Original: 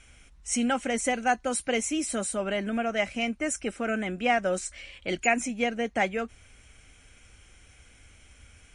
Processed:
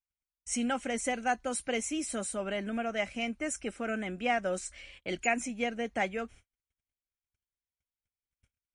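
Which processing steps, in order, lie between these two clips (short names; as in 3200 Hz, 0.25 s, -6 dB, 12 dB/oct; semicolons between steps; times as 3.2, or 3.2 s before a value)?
gate -47 dBFS, range -45 dB; gain -5 dB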